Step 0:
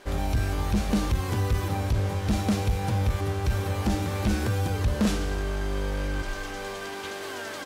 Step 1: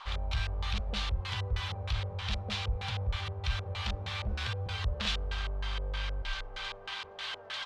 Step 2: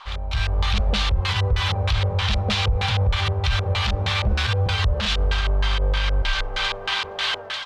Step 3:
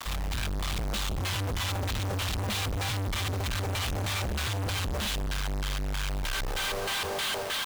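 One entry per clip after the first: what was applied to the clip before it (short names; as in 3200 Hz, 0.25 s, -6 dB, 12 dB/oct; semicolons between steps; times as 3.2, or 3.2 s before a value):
band noise 730–1300 Hz -43 dBFS; passive tone stack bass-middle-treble 10-0-10; LFO low-pass square 3.2 Hz 500–3500 Hz; gain +1.5 dB
AGC gain up to 11 dB; limiter -17 dBFS, peak gain reduction 10 dB; gain +4.5 dB
companded quantiser 2-bit; gain -5 dB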